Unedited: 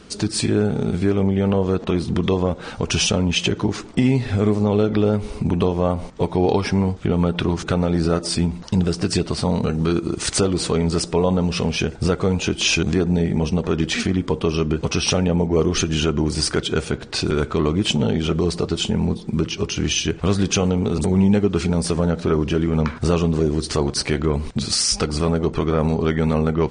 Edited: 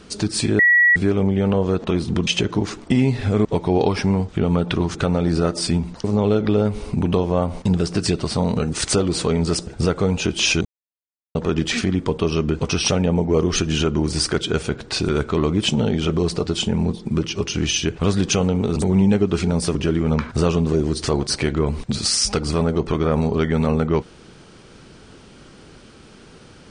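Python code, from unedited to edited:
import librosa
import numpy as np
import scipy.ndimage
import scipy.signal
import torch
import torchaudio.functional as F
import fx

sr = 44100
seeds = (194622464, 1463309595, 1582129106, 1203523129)

y = fx.edit(x, sr, fx.bleep(start_s=0.59, length_s=0.37, hz=1930.0, db=-10.5),
    fx.cut(start_s=2.27, length_s=1.07),
    fx.move(start_s=4.52, length_s=1.61, to_s=8.72),
    fx.cut(start_s=9.79, length_s=0.38),
    fx.cut(start_s=11.12, length_s=0.77),
    fx.silence(start_s=12.87, length_s=0.7),
    fx.cut(start_s=21.97, length_s=0.45), tone=tone)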